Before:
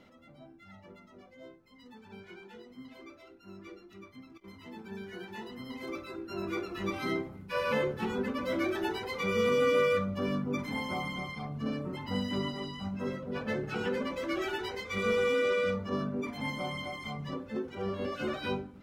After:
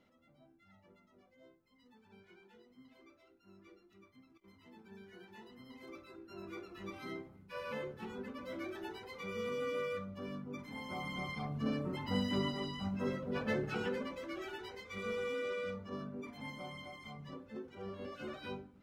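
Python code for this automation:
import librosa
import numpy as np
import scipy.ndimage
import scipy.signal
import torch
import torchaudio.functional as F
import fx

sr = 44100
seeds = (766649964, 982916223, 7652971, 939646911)

y = fx.gain(x, sr, db=fx.line((10.7, -12.0), (11.3, -1.5), (13.62, -1.5), (14.31, -10.5)))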